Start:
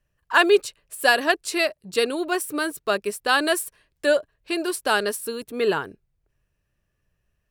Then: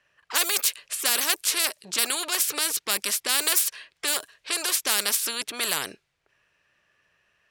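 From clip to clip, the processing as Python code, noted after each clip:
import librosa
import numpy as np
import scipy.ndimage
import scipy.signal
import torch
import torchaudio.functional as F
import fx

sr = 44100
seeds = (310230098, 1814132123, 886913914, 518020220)

y = fx.env_lowpass(x, sr, base_hz=2100.0, full_db=-17.5)
y = np.diff(y, prepend=0.0)
y = fx.spectral_comp(y, sr, ratio=4.0)
y = F.gain(torch.from_numpy(y), 8.5).numpy()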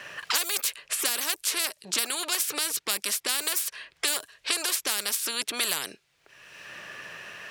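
y = fx.band_squash(x, sr, depth_pct=100)
y = F.gain(torch.from_numpy(y), -4.0).numpy()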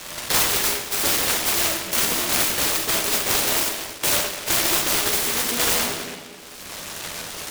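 y = fx.doubler(x, sr, ms=12.0, db=-3.5)
y = fx.rev_freeverb(y, sr, rt60_s=1.9, hf_ratio=0.45, predelay_ms=0, drr_db=-3.0)
y = fx.noise_mod_delay(y, sr, seeds[0], noise_hz=2200.0, depth_ms=0.22)
y = F.gain(torch.from_numpy(y), 3.5).numpy()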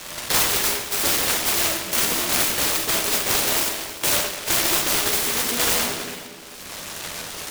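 y = x + 10.0 ** (-19.0 / 20.0) * np.pad(x, (int(403 * sr / 1000.0), 0))[:len(x)]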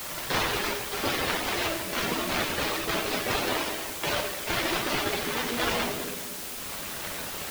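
y = fx.spec_quant(x, sr, step_db=15)
y = fx.air_absorb(y, sr, metres=210.0)
y = fx.quant_dither(y, sr, seeds[1], bits=6, dither='triangular')
y = F.gain(torch.from_numpy(y), -1.5).numpy()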